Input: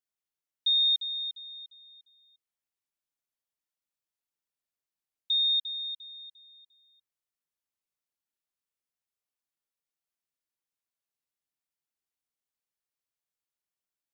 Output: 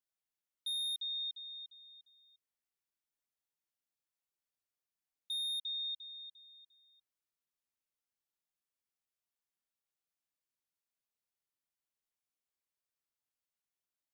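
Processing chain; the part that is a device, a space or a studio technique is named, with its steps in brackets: clipper into limiter (hard clip -26 dBFS, distortion -13 dB; limiter -32 dBFS, peak gain reduction 6 dB); gain -3.5 dB

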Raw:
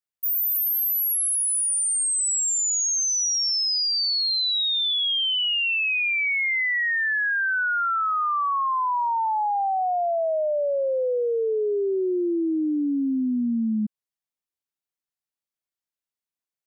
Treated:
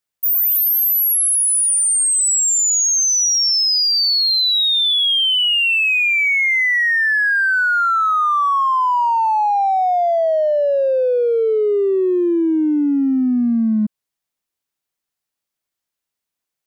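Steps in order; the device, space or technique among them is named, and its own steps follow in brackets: parallel distortion (in parallel at -13 dB: hard clip -33.5 dBFS, distortion -9 dB); on the sum: gain +7 dB

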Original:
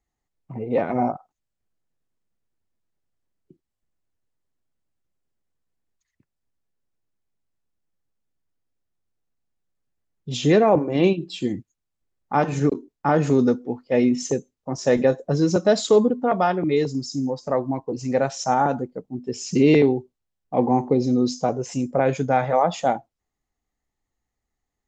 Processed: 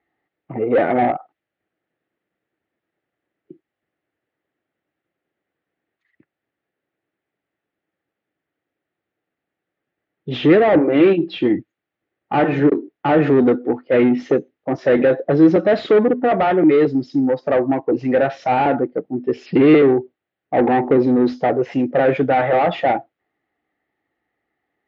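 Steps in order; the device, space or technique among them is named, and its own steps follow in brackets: 19.46–20.97 steep low-pass 5000 Hz 96 dB/oct; overdrive pedal into a guitar cabinet (overdrive pedal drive 23 dB, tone 1100 Hz, clips at -5.5 dBFS; speaker cabinet 87–3500 Hz, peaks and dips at 220 Hz -3 dB, 320 Hz +6 dB, 1000 Hz -9 dB, 1900 Hz +5 dB)

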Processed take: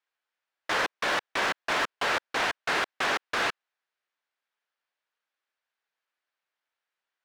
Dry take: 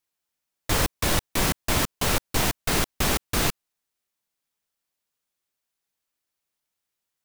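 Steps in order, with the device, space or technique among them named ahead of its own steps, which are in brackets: megaphone (BPF 530–3100 Hz; bell 1600 Hz +5 dB 0.45 oct; hard clip -24 dBFS, distortion -13 dB); gain +2 dB

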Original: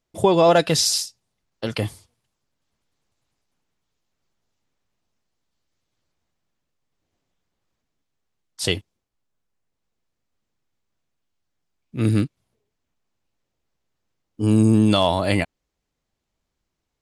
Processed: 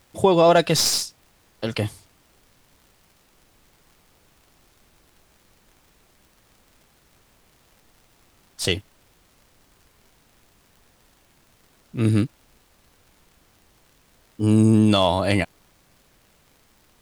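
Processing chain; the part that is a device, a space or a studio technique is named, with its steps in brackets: record under a worn stylus (tracing distortion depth 0.021 ms; crackle; pink noise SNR 33 dB)

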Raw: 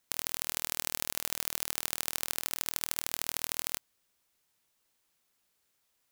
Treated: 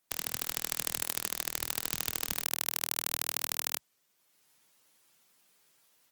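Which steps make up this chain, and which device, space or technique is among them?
0.66–1.29 dynamic EQ 8600 Hz, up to +4 dB, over -53 dBFS, Q 1.9; noise-suppressed video call (HPF 110 Hz 24 dB/oct; spectral gate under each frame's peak -25 dB strong; AGC gain up to 8.5 dB; Opus 20 kbps 48000 Hz)

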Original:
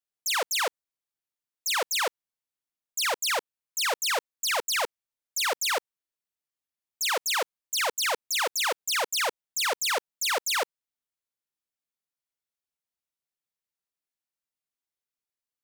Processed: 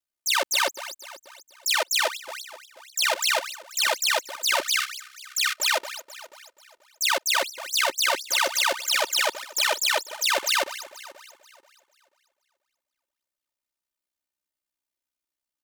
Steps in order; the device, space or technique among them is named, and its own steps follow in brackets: regenerating reverse delay 0.242 s, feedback 52%, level -13 dB; 4.62–5.58 Chebyshev high-pass 1200 Hz, order 8; dynamic EQ 3200 Hz, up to +3 dB, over -35 dBFS, Q 0.87; ring-modulated robot voice (ring modulator 32 Hz; comb 3.3 ms, depth 68%); gain +3.5 dB

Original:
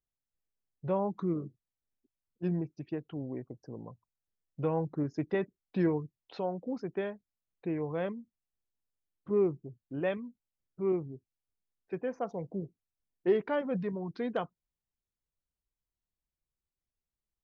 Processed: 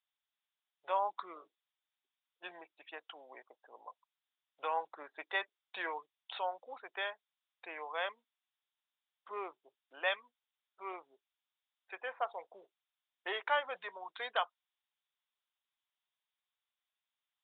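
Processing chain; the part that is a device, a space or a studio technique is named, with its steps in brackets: musical greeting card (downsampling 8000 Hz; HPF 800 Hz 24 dB/oct; bell 3600 Hz +8.5 dB 0.47 oct); gain +6 dB

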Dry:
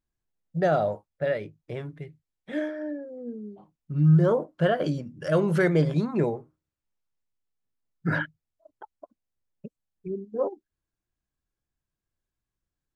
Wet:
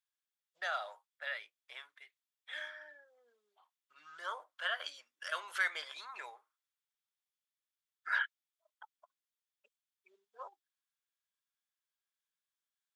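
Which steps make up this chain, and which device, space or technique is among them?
headphones lying on a table (HPF 1100 Hz 24 dB/oct; bell 3400 Hz +7 dB 0.27 oct); gain -2.5 dB

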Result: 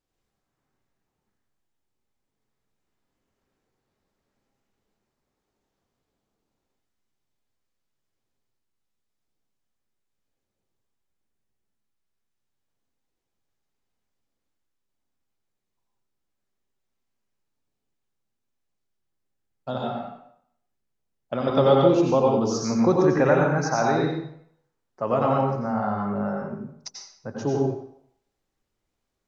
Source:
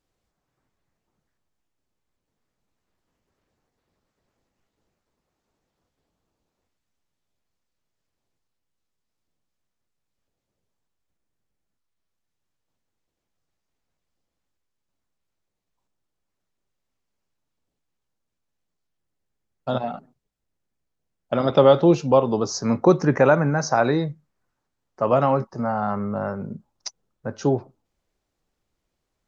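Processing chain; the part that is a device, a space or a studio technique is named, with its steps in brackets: bathroom (reverb RT60 0.65 s, pre-delay 83 ms, DRR -1.5 dB); gain -5.5 dB

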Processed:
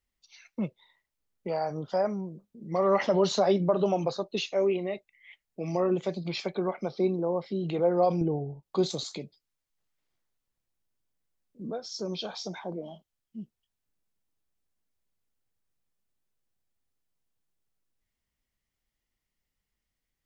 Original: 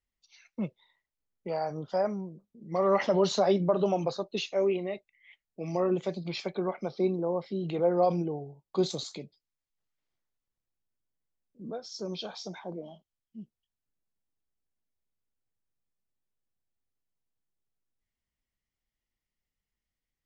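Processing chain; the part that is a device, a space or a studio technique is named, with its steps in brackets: parallel compression (in parallel at -4 dB: compressor, threshold -39 dBFS, peak gain reduction 18 dB); 8.21–8.63 on the sum: tilt -2 dB/oct

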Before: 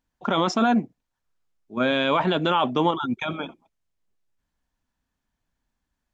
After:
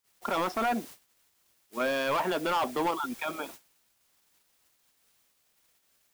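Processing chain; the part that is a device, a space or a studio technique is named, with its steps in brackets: aircraft radio (BPF 370–2700 Hz; hard clip -20.5 dBFS, distortion -11 dB; white noise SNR 15 dB; gate -42 dBFS, range -32 dB); gain -3 dB

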